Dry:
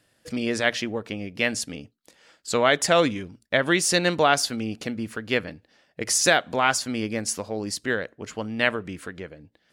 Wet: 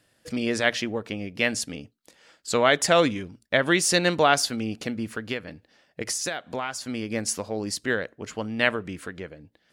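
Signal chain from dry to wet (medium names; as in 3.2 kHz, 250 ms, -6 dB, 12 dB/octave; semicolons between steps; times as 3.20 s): 5.28–7.11 s: compression 16:1, threshold -26 dBFS, peak gain reduction 13.5 dB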